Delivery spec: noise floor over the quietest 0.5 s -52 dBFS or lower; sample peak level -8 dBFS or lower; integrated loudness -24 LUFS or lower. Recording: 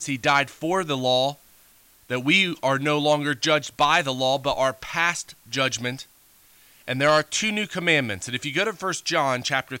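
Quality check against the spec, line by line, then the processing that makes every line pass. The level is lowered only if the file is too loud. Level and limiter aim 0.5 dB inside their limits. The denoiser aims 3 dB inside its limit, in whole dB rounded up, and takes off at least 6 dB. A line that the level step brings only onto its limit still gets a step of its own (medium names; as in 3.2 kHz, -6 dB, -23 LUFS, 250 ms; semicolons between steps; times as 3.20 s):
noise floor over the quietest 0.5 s -56 dBFS: pass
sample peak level -4.5 dBFS: fail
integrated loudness -22.5 LUFS: fail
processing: trim -2 dB; peak limiter -8.5 dBFS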